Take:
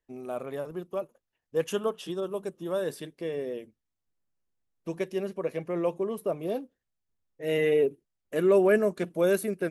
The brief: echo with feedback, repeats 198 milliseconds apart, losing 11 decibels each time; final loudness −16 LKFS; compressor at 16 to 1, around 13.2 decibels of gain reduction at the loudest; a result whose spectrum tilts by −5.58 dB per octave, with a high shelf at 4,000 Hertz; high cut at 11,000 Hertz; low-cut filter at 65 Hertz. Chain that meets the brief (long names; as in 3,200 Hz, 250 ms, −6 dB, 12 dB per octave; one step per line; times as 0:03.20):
high-pass filter 65 Hz
low-pass filter 11,000 Hz
high-shelf EQ 4,000 Hz −3.5 dB
downward compressor 16 to 1, threshold −31 dBFS
repeating echo 198 ms, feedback 28%, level −11 dB
level +21 dB